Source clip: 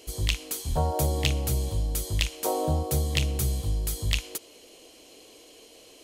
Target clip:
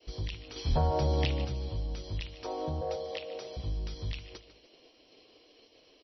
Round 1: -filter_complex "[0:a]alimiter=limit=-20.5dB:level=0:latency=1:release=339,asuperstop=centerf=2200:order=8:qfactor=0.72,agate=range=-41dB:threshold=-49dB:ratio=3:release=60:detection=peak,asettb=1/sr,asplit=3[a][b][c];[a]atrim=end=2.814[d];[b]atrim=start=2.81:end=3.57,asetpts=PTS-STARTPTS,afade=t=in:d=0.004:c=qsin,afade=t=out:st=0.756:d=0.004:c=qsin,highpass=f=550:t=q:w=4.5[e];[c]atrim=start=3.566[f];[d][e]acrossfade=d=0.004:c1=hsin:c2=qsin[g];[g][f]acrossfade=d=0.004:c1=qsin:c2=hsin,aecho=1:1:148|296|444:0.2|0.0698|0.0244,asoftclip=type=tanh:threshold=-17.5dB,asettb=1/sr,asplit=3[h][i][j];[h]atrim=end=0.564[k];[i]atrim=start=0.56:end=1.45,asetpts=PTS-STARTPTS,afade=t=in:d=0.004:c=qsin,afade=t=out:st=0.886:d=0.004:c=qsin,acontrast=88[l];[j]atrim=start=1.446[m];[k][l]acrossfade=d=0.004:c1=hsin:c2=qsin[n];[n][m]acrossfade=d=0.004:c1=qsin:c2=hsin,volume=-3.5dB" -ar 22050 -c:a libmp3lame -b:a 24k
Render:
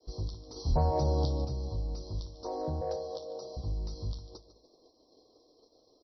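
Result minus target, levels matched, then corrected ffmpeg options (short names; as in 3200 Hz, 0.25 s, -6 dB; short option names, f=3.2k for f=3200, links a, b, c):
2000 Hz band -19.0 dB
-filter_complex "[0:a]alimiter=limit=-20.5dB:level=0:latency=1:release=339,agate=range=-41dB:threshold=-49dB:ratio=3:release=60:detection=peak,asettb=1/sr,asplit=3[a][b][c];[a]atrim=end=2.814[d];[b]atrim=start=2.81:end=3.57,asetpts=PTS-STARTPTS,afade=t=in:d=0.004:c=qsin,afade=t=out:st=0.756:d=0.004:c=qsin,highpass=f=550:t=q:w=4.5[e];[c]atrim=start=3.566[f];[d][e]acrossfade=d=0.004:c1=hsin:c2=qsin[g];[g][f]acrossfade=d=0.004:c1=qsin:c2=hsin,aecho=1:1:148|296|444:0.2|0.0698|0.0244,asoftclip=type=tanh:threshold=-17.5dB,asettb=1/sr,asplit=3[h][i][j];[h]atrim=end=0.564[k];[i]atrim=start=0.56:end=1.45,asetpts=PTS-STARTPTS,afade=t=in:d=0.004:c=qsin,afade=t=out:st=0.886:d=0.004:c=qsin,acontrast=88[l];[j]atrim=start=1.446[m];[k][l]acrossfade=d=0.004:c1=hsin:c2=qsin[n];[n][m]acrossfade=d=0.004:c1=qsin:c2=hsin,volume=-3.5dB" -ar 22050 -c:a libmp3lame -b:a 24k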